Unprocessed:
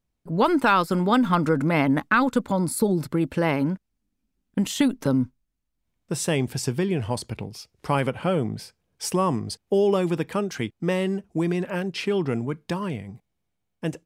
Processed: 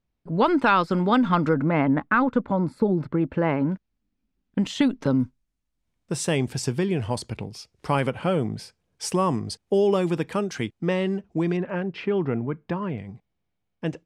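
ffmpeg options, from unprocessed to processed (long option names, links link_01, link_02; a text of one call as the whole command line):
ffmpeg -i in.wav -af "asetnsamples=nb_out_samples=441:pad=0,asendcmd='1.54 lowpass f 1900;3.72 lowpass f 4600;5.2 lowpass f 10000;10.8 lowpass f 4800;11.57 lowpass f 2100;12.98 lowpass f 4400',lowpass=4500" out.wav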